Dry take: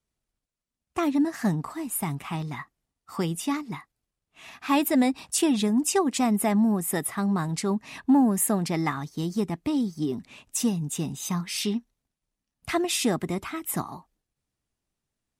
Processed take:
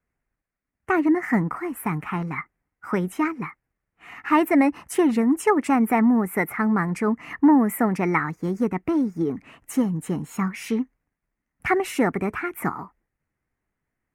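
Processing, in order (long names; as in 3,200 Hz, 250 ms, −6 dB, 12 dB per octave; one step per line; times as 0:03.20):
wrong playback speed 44.1 kHz file played as 48 kHz
high shelf with overshoot 2,700 Hz −11 dB, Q 3
level +3.5 dB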